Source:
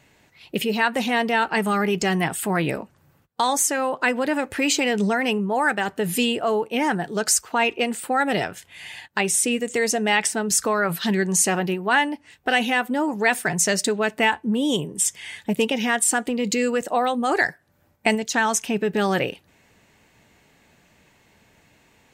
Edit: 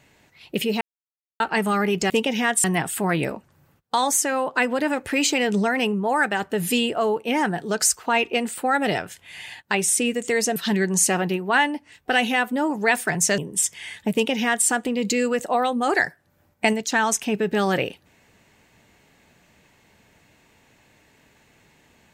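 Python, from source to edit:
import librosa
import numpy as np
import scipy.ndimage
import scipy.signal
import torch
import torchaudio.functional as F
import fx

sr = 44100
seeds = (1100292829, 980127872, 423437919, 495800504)

y = fx.edit(x, sr, fx.silence(start_s=0.81, length_s=0.59),
    fx.cut(start_s=10.02, length_s=0.92),
    fx.cut(start_s=13.76, length_s=1.04),
    fx.duplicate(start_s=15.55, length_s=0.54, to_s=2.1), tone=tone)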